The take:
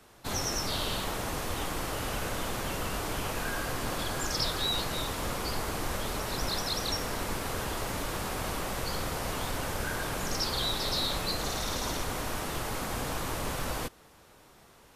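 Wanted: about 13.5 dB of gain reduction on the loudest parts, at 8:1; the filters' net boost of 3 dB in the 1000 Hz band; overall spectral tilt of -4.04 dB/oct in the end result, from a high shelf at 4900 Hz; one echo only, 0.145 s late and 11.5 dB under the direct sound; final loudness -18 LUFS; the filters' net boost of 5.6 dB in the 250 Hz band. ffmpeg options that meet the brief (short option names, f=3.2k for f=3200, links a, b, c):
-af "equalizer=f=250:t=o:g=7,equalizer=f=1k:t=o:g=3.5,highshelf=f=4.9k:g=-4,acompressor=threshold=-41dB:ratio=8,aecho=1:1:145:0.266,volume=26dB"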